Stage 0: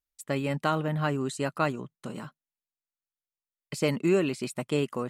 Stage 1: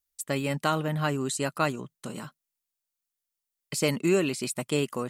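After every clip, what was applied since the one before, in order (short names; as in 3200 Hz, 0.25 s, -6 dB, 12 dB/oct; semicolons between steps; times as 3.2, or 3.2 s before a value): high shelf 4200 Hz +10.5 dB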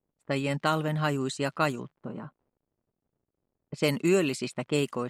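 crackle 150/s -48 dBFS; low-pass opened by the level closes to 390 Hz, open at -23 dBFS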